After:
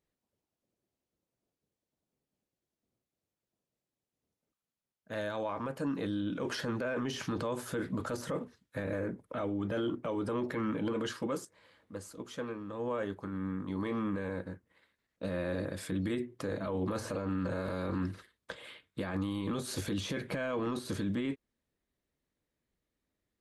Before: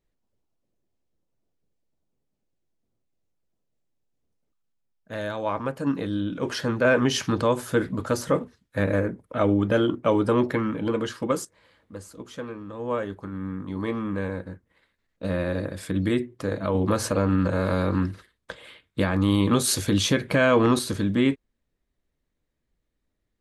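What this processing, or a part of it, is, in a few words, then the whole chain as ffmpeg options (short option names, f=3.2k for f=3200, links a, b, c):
podcast mastering chain: -af "highpass=f=110:p=1,deesser=0.8,acompressor=threshold=-24dB:ratio=2.5,alimiter=limit=-23dB:level=0:latency=1:release=11,volume=-2.5dB" -ar 32000 -c:a libmp3lame -b:a 112k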